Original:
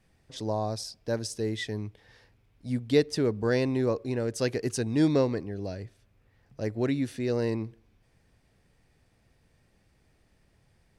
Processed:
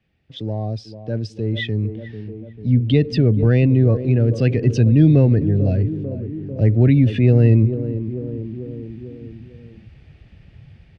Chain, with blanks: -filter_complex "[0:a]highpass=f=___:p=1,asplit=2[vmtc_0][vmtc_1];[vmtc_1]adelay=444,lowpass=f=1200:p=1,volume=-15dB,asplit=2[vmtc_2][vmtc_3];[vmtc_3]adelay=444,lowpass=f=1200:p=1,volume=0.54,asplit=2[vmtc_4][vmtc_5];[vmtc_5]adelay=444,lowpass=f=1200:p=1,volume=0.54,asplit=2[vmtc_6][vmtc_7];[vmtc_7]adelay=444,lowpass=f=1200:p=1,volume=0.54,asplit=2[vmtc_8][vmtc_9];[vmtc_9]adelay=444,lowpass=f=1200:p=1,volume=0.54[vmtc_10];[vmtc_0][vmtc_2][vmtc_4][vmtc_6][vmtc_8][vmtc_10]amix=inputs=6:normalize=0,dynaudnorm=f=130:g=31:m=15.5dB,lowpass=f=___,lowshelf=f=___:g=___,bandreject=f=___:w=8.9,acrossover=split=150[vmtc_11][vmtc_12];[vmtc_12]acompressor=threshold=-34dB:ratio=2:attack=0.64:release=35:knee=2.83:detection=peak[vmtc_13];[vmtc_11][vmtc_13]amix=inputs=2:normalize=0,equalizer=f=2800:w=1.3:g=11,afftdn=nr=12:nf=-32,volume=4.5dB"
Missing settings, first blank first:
68, 4100, 420, 9, 1000